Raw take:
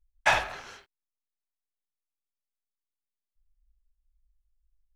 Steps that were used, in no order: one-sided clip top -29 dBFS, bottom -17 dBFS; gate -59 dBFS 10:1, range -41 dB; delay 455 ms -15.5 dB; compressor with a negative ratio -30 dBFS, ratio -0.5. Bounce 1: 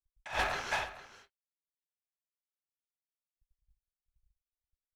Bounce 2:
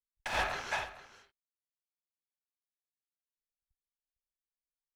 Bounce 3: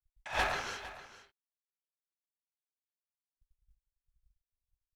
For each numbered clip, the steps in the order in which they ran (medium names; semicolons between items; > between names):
delay > compressor with a negative ratio > one-sided clip > gate; gate > delay > one-sided clip > compressor with a negative ratio; compressor with a negative ratio > one-sided clip > gate > delay